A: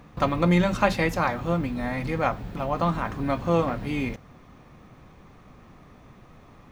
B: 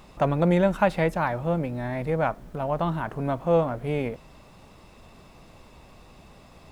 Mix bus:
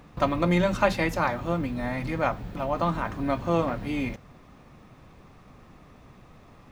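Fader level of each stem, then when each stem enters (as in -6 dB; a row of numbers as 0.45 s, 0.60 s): -1.5 dB, -12.0 dB; 0.00 s, 0.00 s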